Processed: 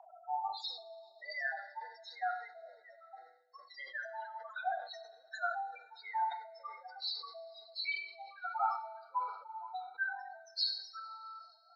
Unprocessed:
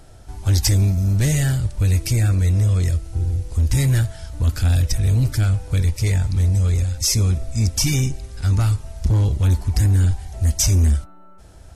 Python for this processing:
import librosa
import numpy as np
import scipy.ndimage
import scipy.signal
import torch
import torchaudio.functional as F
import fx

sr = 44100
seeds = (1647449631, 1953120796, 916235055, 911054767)

y = fx.freq_compress(x, sr, knee_hz=2300.0, ratio=1.5)
y = fx.high_shelf(y, sr, hz=4400.0, db=-11.5, at=(9.21, 9.99))
y = fx.spec_topn(y, sr, count=16)
y = scipy.signal.sosfilt(scipy.signal.cheby1(5, 1.0, [720.0, 7500.0], 'bandpass', fs=sr, output='sos'), y)
y = fx.rev_double_slope(y, sr, seeds[0], early_s=0.5, late_s=3.1, knee_db=-18, drr_db=10.5)
y = fx.hpss(y, sr, part='harmonic', gain_db=6)
y = y + 10.0 ** (-19.0 / 20.0) * np.pad(y, (int(99 * sr / 1000.0), 0))[:len(y)]
y = fx.filter_sweep_bandpass(y, sr, from_hz=930.0, to_hz=1900.0, start_s=8.76, end_s=11.04, q=8.0)
y = fx.sustainer(y, sr, db_per_s=90.0)
y = y * librosa.db_to_amplitude(16.0)